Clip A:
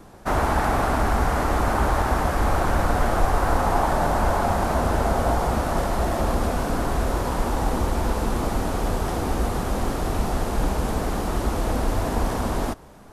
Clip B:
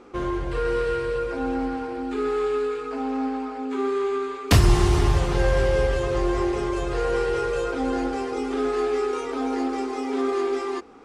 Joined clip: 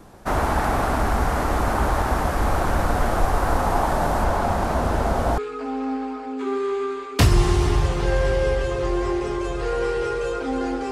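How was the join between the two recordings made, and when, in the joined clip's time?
clip A
0:04.24–0:05.38: high-shelf EQ 8,900 Hz −7 dB
0:05.38: continue with clip B from 0:02.70

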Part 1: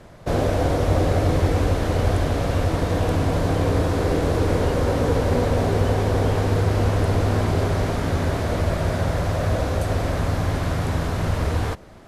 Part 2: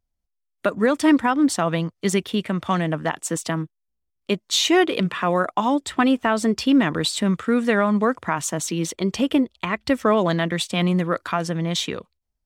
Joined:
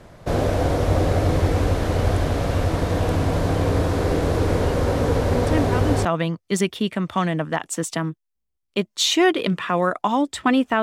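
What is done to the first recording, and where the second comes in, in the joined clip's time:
part 1
0:05.45: mix in part 2 from 0:00.98 0.60 s −8 dB
0:06.05: continue with part 2 from 0:01.58

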